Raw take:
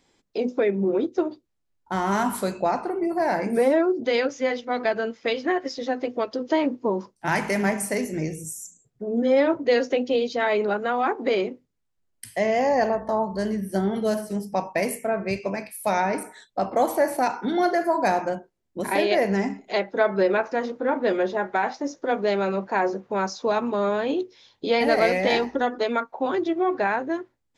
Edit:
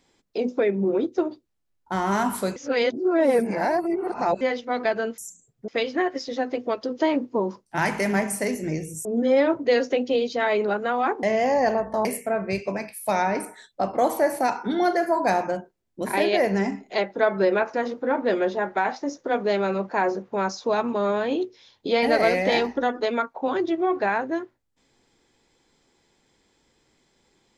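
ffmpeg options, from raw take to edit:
-filter_complex "[0:a]asplit=8[a][b][c][d][e][f][g][h];[a]atrim=end=2.562[i];[b]atrim=start=2.558:end=4.412,asetpts=PTS-STARTPTS,areverse[j];[c]atrim=start=4.408:end=5.182[k];[d]atrim=start=8.548:end=9.052[l];[e]atrim=start=5.178:end=8.552[m];[f]atrim=start=9.048:end=11.232[n];[g]atrim=start=12.378:end=13.202[o];[h]atrim=start=14.828[p];[i][j]acrossfade=d=0.004:c1=hsin:c2=hsin[q];[q][k]acrossfade=d=0.004:c1=hsin:c2=hsin[r];[r][l]acrossfade=d=0.004:c1=hsin:c2=hsin[s];[s][m]acrossfade=d=0.004:c1=hsin:c2=hsin[t];[t][n]acrossfade=d=0.004:c1=hsin:c2=hsin[u];[u][o]acrossfade=d=0.004:c1=hsin:c2=hsin[v];[v][p]acrossfade=d=0.004:c1=hsin:c2=hsin"

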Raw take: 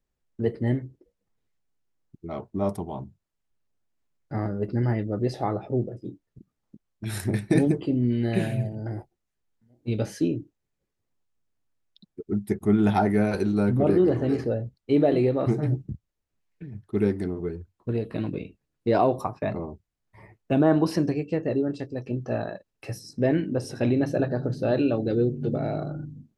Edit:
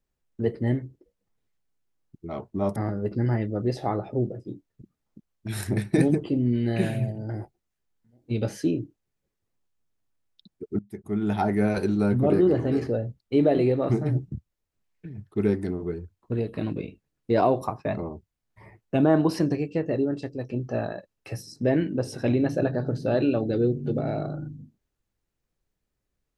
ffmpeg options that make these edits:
-filter_complex "[0:a]asplit=3[a][b][c];[a]atrim=end=2.762[d];[b]atrim=start=4.328:end=12.36,asetpts=PTS-STARTPTS,afade=t=out:st=8.028:d=0.004:c=hsin:silence=0.0944061[e];[c]atrim=start=12.36,asetpts=PTS-STARTPTS,afade=t=in:d=0.92:silence=0.0944061[f];[e][f]concat=n=2:v=0:a=1[g];[d][g]acrossfade=d=0.004:c1=hsin:c2=hsin"

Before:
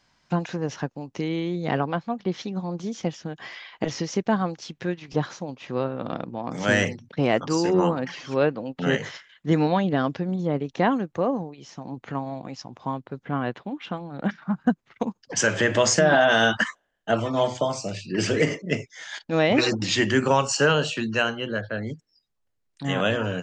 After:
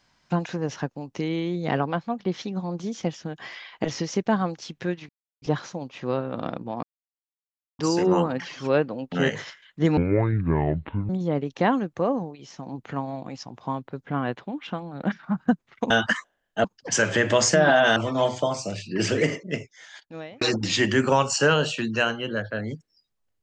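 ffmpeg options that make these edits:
-filter_complex "[0:a]asplit=10[a][b][c][d][e][f][g][h][i][j];[a]atrim=end=5.09,asetpts=PTS-STARTPTS,afade=t=out:st=5.086:d=0.004:c=hsin,apad=pad_dur=0.33[k];[b]atrim=start=5.09:end=6.5,asetpts=PTS-STARTPTS,afade=t=in:d=0.004:c=hsin,afade=t=out:st=1.406:d=0.004:c=hsin[l];[c]atrim=start=6.5:end=7.46,asetpts=PTS-STARTPTS,volume=0[m];[d]atrim=start=7.46:end=9.644,asetpts=PTS-STARTPTS,afade=t=in:d=0.004:c=hsin[n];[e]atrim=start=9.64:end=10.28,asetpts=PTS-STARTPTS,asetrate=25137,aresample=44100[o];[f]atrim=start=10.276:end=15.092[p];[g]atrim=start=16.408:end=17.152[q];[h]atrim=start=15.088:end=16.412[r];[i]atrim=start=17.148:end=19.6,asetpts=PTS-STARTPTS,afade=t=out:st=1.122:d=1.33[s];[j]atrim=start=19.6,asetpts=PTS-STARTPTS,afade=t=in:d=0.004:c=hsin[t];[k][l][m][n]concat=n=4:v=0:a=1[u];[u][o]acrossfade=d=0.004:c1=hsin:c2=hsin[v];[v][p]acrossfade=d=0.004:c1=hsin:c2=hsin[w];[w][q]acrossfade=d=0.004:c1=hsin:c2=hsin[x];[x][r]acrossfade=d=0.004:c1=hsin:c2=hsin[y];[s][t]concat=n=2:v=0:a=1[z];[y][z]acrossfade=d=0.004:c1=hsin:c2=hsin"

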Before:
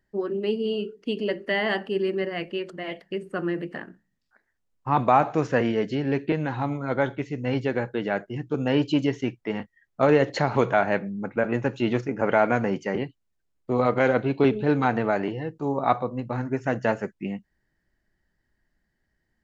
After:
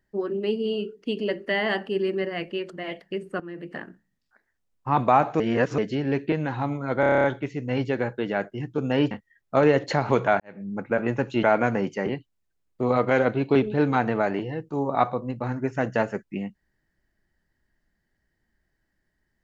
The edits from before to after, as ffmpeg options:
-filter_complex "[0:a]asplit=15[a][b][c][d][e][f][g][h][i][j][k][l][m][n][o];[a]atrim=end=3.4,asetpts=PTS-STARTPTS,afade=t=out:st=3.396:d=0.004:c=hsin:silence=0.223872[p];[b]atrim=start=3.4:end=5.402,asetpts=PTS-STARTPTS,afade=t=in:d=0.36:c=qua:silence=0.223872[q];[c]atrim=start=5.398:end=5.782,asetpts=PTS-STARTPTS,areverse[r];[d]atrim=start=5.778:end=7.032[s];[e]atrim=start=6.998:end=7.032[t];[f]atrim=start=6.998:end=7.032[u];[g]atrim=start=6.998:end=7.032[v];[h]atrim=start=6.998:end=7.032[w];[i]atrim=start=6.998:end=7.032[x];[j]atrim=start=6.998:end=7.032[y];[k]atrim=start=6.998:end=7.032[z];[l]atrim=start=6.998:end=8.872[aa];[m]atrim=start=9.568:end=10.86,asetpts=PTS-STARTPTS,afade=t=out:st=1.288:d=0.004:c=hsin[ab];[n]atrim=start=10.86:end=11.892,asetpts=PTS-STARTPTS,afade=t=in:d=0.28:c=qua[ac];[o]atrim=start=12.318[ad];[p][q]concat=n=2:v=0:a=1[ae];[ae][r]acrossfade=d=0.004:c1=hsin:c2=hsin[af];[af][s]acrossfade=d=0.004:c1=hsin:c2=hsin[ag];[ag][t]acrossfade=d=0.004:c1=hsin:c2=hsin[ah];[ah][u]acrossfade=d=0.004:c1=hsin:c2=hsin[ai];[ai][v]acrossfade=d=0.004:c1=hsin:c2=hsin[aj];[aj][w]acrossfade=d=0.004:c1=hsin:c2=hsin[ak];[ak][x]acrossfade=d=0.004:c1=hsin:c2=hsin[al];[al][y]acrossfade=d=0.004:c1=hsin:c2=hsin[am];[am][z]acrossfade=d=0.004:c1=hsin:c2=hsin[an];[an][aa]acrossfade=d=0.004:c1=hsin:c2=hsin[ao];[ab][ac]concat=n=2:v=0:a=1[ap];[ao][ap]acrossfade=d=0.004:c1=hsin:c2=hsin[aq];[aq][ad]acrossfade=d=0.004:c1=hsin:c2=hsin"

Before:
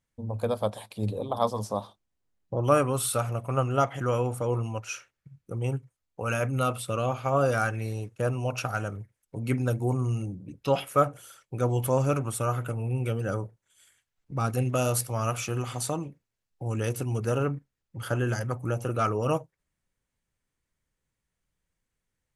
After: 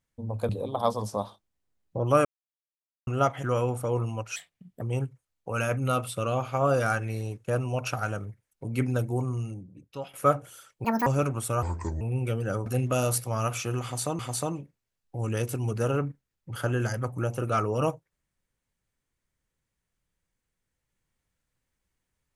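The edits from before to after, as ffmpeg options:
-filter_complex "[0:a]asplit=13[a][b][c][d][e][f][g][h][i][j][k][l][m];[a]atrim=end=0.492[n];[b]atrim=start=1.058:end=2.82,asetpts=PTS-STARTPTS,afade=t=out:st=1.758:d=0.004:c=hsin[o];[c]atrim=start=2.82:end=3.64,asetpts=PTS-STARTPTS,volume=0[p];[d]atrim=start=3.64:end=4.934,asetpts=PTS-STARTPTS,afade=t=in:d=0.004:c=hsin[q];[e]atrim=start=4.93:end=5.53,asetpts=PTS-STARTPTS,asetrate=58212,aresample=44100,atrim=end_sample=20045,asetpts=PTS-STARTPTS[r];[f]atrim=start=5.526:end=10.85,asetpts=PTS-STARTPTS,afade=t=out:st=4.104:d=1.22:silence=0.149624[s];[g]atrim=start=10.85:end=11.564,asetpts=PTS-STARTPTS,afade=t=in:d=0.004:c=hsin:silence=0.149624[t];[h]atrim=start=11.56:end=11.97,asetpts=PTS-STARTPTS,asetrate=82026,aresample=44100[u];[i]atrim=start=11.966:end=12.534[v];[j]atrim=start=12.53:end=12.8,asetpts=PTS-STARTPTS,asetrate=30870,aresample=44100[w];[k]atrim=start=12.796:end=13.452[x];[l]atrim=start=14.488:end=16.022[y];[m]atrim=start=15.658[z];[o][p][q]concat=n=3:v=0:a=1[aa];[n][aa]acrossfade=d=0.004:c1=hsin:c2=hsin[ab];[ab][r]acrossfade=d=0.004:c1=hsin:c2=hsin[ac];[s][t]concat=n=2:v=0:a=1[ad];[ac][ad]acrossfade=d=0.004:c1=hsin:c2=hsin[ae];[ae][u]acrossfade=d=0.004:c1=hsin:c2=hsin[af];[af][v]acrossfade=d=0.004:c1=hsin:c2=hsin[ag];[ag][w]acrossfade=d=0.004:c1=hsin:c2=hsin[ah];[ah][x]acrossfade=d=0.004:c1=hsin:c2=hsin[ai];[ai][y]acrossfade=d=0.004:c1=hsin:c2=hsin[aj];[aj][z]acrossfade=d=0.004:c1=hsin:c2=hsin"

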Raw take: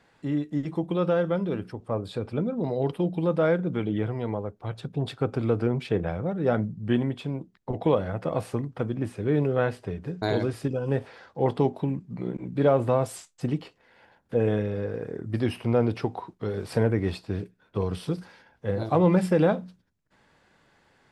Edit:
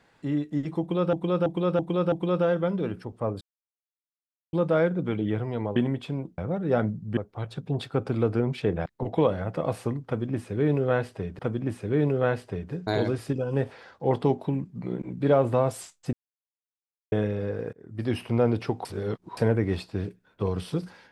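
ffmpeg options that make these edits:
-filter_complex "[0:a]asplit=17[a][b][c][d][e][f][g][h][i][j][k][l][m][n][o][p][q];[a]atrim=end=1.132[r];[b]atrim=start=0.798:end=1.132[s];[c]atrim=start=0.798:end=1.132[t];[d]atrim=start=0.798:end=1.132[u];[e]atrim=start=0.798:end=2.09,asetpts=PTS-STARTPTS,afade=t=out:st=1.288:d=0.004:c=hsin[v];[f]atrim=start=2.09:end=3.21,asetpts=PTS-STARTPTS,volume=0[w];[g]atrim=start=3.21:end=4.442,asetpts=PTS-STARTPTS,afade=t=in:d=0.004:c=hsin[x];[h]atrim=start=6.918:end=7.542[y];[i]atrim=start=6.128:end=6.922[z];[j]atrim=start=4.438:end=6.132[aa];[k]atrim=start=7.538:end=10.072[ab];[l]atrim=start=8.738:end=13.48,asetpts=PTS-STARTPTS,afade=t=out:st=4.738:d=0.004:c=hsin[ac];[m]atrim=start=13.48:end=14.47,asetpts=PTS-STARTPTS,volume=0[ad];[n]atrim=start=14.47:end=15.08,asetpts=PTS-STARTPTS,afade=t=in:d=0.004:c=hsin,afade=t=out:st=0.606:d=0.004:c=hsin[ae];[o]atrim=start=15.08:end=16.202,asetpts=PTS-STARTPTS,afade=t=in:d=0.43[af];[p]atrim=start=16.198:end=16.722,asetpts=PTS-STARTPTS,areverse[ag];[q]atrim=start=16.718[ah];[r][s]acrossfade=d=0.004:c1=hsin:c2=hsin[ai];[ai][t]acrossfade=d=0.004:c1=hsin:c2=hsin[aj];[aj][u]acrossfade=d=0.004:c1=hsin:c2=hsin[ak];[v][w][x]concat=n=3:v=0:a=1[al];[ak][al]acrossfade=d=0.004:c1=hsin:c2=hsin[am];[am][y]acrossfade=d=0.004:c1=hsin:c2=hsin[an];[an][z]acrossfade=d=0.004:c1=hsin:c2=hsin[ao];[ao][aa]acrossfade=d=0.004:c1=hsin:c2=hsin[ap];[ap][ab]acrossfade=d=0.004:c1=hsin:c2=hsin[aq];[ac][ad][ae][af]concat=n=4:v=0:a=1[ar];[aq][ar]acrossfade=d=0.004:c1=hsin:c2=hsin[as];[as][ag]acrossfade=d=0.004:c1=hsin:c2=hsin[at];[at][ah]acrossfade=d=0.004:c1=hsin:c2=hsin"

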